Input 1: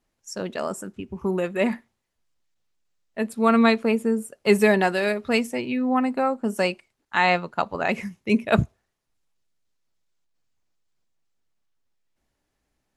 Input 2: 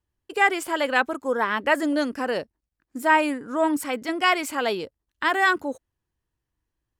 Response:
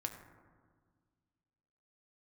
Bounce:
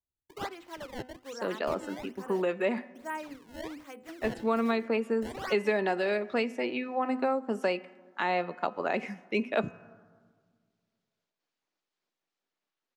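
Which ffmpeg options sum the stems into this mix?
-filter_complex "[0:a]acrossover=split=220 5900:gain=0.0631 1 0.178[a][b][c];[a][b][c]amix=inputs=3:normalize=0,adelay=1050,volume=-2dB,asplit=2[d][e];[e]volume=-14.5dB[f];[1:a]highshelf=f=5.5k:g=-8.5,bandreject=f=50:t=h:w=6,bandreject=f=100:t=h:w=6,bandreject=f=150:t=h:w=6,bandreject=f=200:t=h:w=6,bandreject=f=250:t=h:w=6,bandreject=f=300:t=h:w=6,bandreject=f=350:t=h:w=6,acrusher=samples=21:mix=1:aa=0.000001:lfo=1:lforange=33.6:lforate=1.2,volume=-17.5dB,asplit=2[g][h];[h]volume=-21.5dB[i];[2:a]atrim=start_sample=2205[j];[f][i]amix=inputs=2:normalize=0[k];[k][j]afir=irnorm=-1:irlink=0[l];[d][g][l]amix=inputs=3:normalize=0,bandreject=f=253.6:t=h:w=4,bandreject=f=507.2:t=h:w=4,bandreject=f=760.8:t=h:w=4,bandreject=f=1.0144k:t=h:w=4,bandreject=f=1.268k:t=h:w=4,bandreject=f=1.5216k:t=h:w=4,bandreject=f=1.7752k:t=h:w=4,bandreject=f=2.0288k:t=h:w=4,bandreject=f=2.2824k:t=h:w=4,bandreject=f=2.536k:t=h:w=4,bandreject=f=2.7896k:t=h:w=4,bandreject=f=3.0432k:t=h:w=4,acrossover=split=600|5300[m][n][o];[m]acompressor=threshold=-27dB:ratio=4[p];[n]acompressor=threshold=-32dB:ratio=4[q];[o]acompressor=threshold=-58dB:ratio=4[r];[p][q][r]amix=inputs=3:normalize=0"

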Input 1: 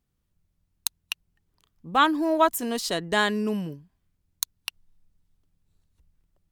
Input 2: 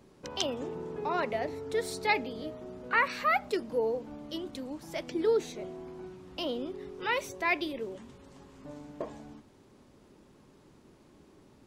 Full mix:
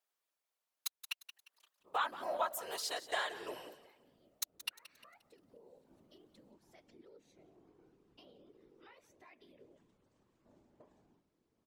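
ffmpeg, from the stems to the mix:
-filter_complex "[0:a]highpass=f=530:w=0.5412,highpass=f=530:w=1.3066,acompressor=threshold=-37dB:ratio=2,volume=2.5dB,asplit=3[a][b][c];[b]volume=-14.5dB[d];[1:a]alimiter=limit=-24dB:level=0:latency=1:release=367,acompressor=threshold=-36dB:ratio=5,adelay=1800,volume=-16dB,afade=t=in:st=4.65:d=0.79:silence=0.473151,asplit=2[e][f];[f]volume=-21dB[g];[c]apad=whole_len=593782[h];[e][h]sidechaincompress=threshold=-37dB:ratio=8:attack=24:release=148[i];[d][g]amix=inputs=2:normalize=0,aecho=0:1:176|352|528|704|880:1|0.37|0.137|0.0507|0.0187[j];[a][i][j]amix=inputs=3:normalize=0,afftfilt=real='hypot(re,im)*cos(2*PI*random(0))':imag='hypot(re,im)*sin(2*PI*random(1))':win_size=512:overlap=0.75"

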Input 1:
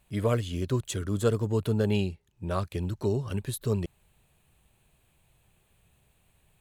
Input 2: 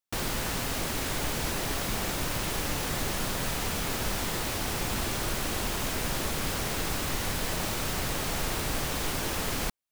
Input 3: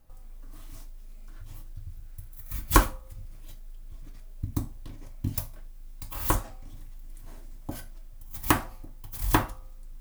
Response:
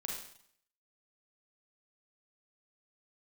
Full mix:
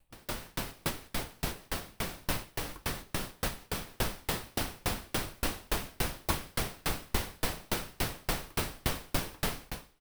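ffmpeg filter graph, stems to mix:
-filter_complex "[0:a]acompressor=threshold=-34dB:ratio=6,lowshelf=f=240:g=-9.5,volume=-4dB,asplit=2[a][b];[1:a]volume=1.5dB,asplit=3[c][d][e];[d]volume=-4.5dB[f];[e]volume=-10.5dB[g];[2:a]volume=-7dB[h];[b]apad=whole_len=437163[i];[c][i]sidechaincompress=threshold=-47dB:ratio=8:attack=5.4:release=136[j];[3:a]atrim=start_sample=2205[k];[f][k]afir=irnorm=-1:irlink=0[l];[g]aecho=0:1:882:1[m];[a][j][h][l][m]amix=inputs=5:normalize=0,equalizer=f=6.9k:t=o:w=0.32:g=-5.5,aeval=exprs='val(0)*pow(10,-38*if(lt(mod(3.5*n/s,1),2*abs(3.5)/1000),1-mod(3.5*n/s,1)/(2*abs(3.5)/1000),(mod(3.5*n/s,1)-2*abs(3.5)/1000)/(1-2*abs(3.5)/1000))/20)':c=same"

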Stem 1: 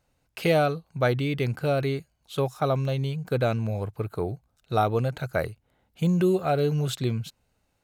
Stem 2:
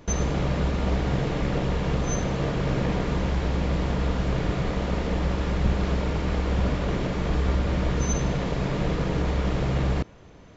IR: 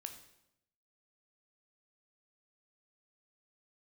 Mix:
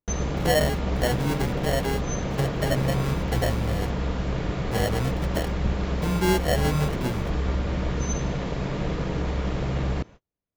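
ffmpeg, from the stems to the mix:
-filter_complex "[0:a]flanger=delay=4.3:depth=9.6:regen=28:speed=0.37:shape=triangular,acrusher=samples=36:mix=1:aa=0.000001,volume=1.5dB,asplit=3[a][b][c];[a]atrim=end=3.99,asetpts=PTS-STARTPTS,afade=t=out:st=3.986:d=0.004:c=hsin[d];[b]atrim=start=3.99:end=4.59,asetpts=PTS-STARTPTS,volume=0[e];[c]atrim=start=4.59,asetpts=PTS-STARTPTS,afade=t=in:d=0.004:c=hsin[f];[d][e][f]concat=n=3:v=0:a=1[g];[1:a]volume=-2dB[h];[g][h]amix=inputs=2:normalize=0,agate=range=-41dB:threshold=-42dB:ratio=16:detection=peak"

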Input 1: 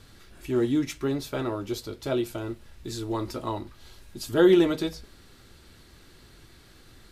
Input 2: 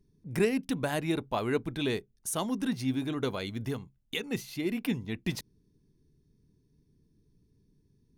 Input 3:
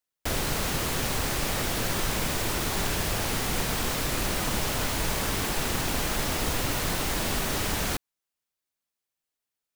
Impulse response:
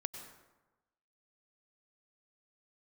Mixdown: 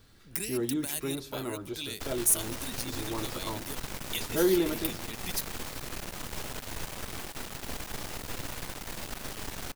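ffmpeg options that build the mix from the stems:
-filter_complex "[0:a]volume=-9dB,asplit=2[a][b];[b]volume=-10dB[c];[1:a]acrossover=split=230|3000[d][e][f];[e]acompressor=threshold=-39dB:ratio=6[g];[d][g][f]amix=inputs=3:normalize=0,aemphasis=mode=production:type=riaa,volume=-4.5dB,asplit=2[h][i];[i]volume=-18dB[j];[2:a]aeval=exprs='max(val(0),0)':c=same,adelay=1750,volume=-8.5dB,asplit=2[k][l];[l]volume=-13dB[m];[3:a]atrim=start_sample=2205[n];[c][j][m]amix=inputs=3:normalize=0[o];[o][n]afir=irnorm=-1:irlink=0[p];[a][h][k][p]amix=inputs=4:normalize=0"

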